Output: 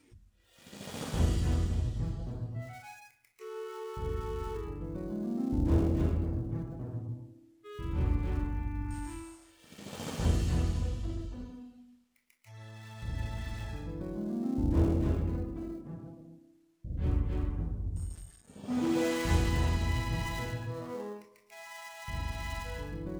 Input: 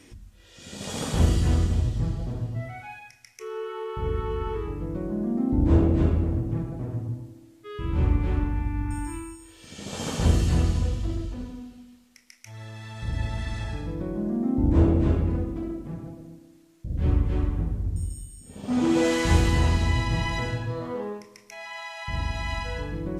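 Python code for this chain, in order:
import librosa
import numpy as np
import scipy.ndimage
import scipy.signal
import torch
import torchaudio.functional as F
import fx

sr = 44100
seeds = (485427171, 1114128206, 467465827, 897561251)

y = fx.dead_time(x, sr, dead_ms=0.093)
y = fx.noise_reduce_blind(y, sr, reduce_db=7)
y = F.gain(torch.from_numpy(y), -7.5).numpy()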